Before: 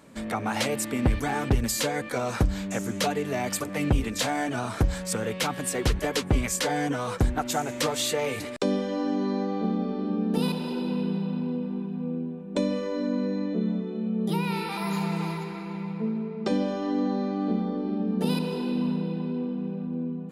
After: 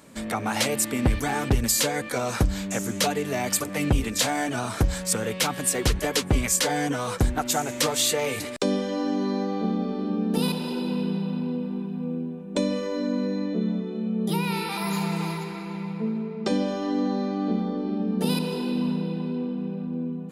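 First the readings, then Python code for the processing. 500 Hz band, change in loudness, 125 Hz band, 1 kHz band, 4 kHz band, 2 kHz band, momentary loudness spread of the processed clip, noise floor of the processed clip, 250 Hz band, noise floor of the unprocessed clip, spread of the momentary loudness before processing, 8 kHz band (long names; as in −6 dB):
+1.0 dB, +2.0 dB, +1.0 dB, +1.5 dB, +4.5 dB, +2.5 dB, 7 LU, −35 dBFS, +1.0 dB, −36 dBFS, 5 LU, +6.5 dB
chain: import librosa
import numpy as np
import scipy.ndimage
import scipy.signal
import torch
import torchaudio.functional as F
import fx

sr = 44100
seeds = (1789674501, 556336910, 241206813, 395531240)

y = fx.high_shelf(x, sr, hz=4100.0, db=7.0)
y = y * 10.0 ** (1.0 / 20.0)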